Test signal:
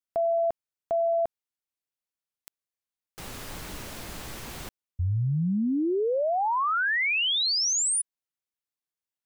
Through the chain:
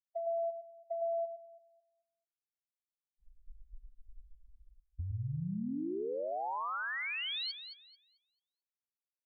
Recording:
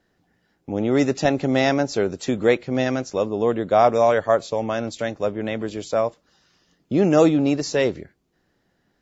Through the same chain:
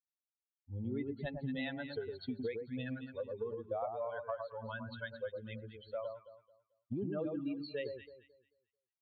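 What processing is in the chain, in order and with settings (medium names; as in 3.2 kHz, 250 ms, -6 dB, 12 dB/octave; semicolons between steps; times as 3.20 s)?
expander on every frequency bin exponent 3; compression 10:1, threshold -37 dBFS; brick-wall FIR low-pass 4.5 kHz; echo whose repeats swap between lows and highs 110 ms, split 1.2 kHz, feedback 50%, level -4 dB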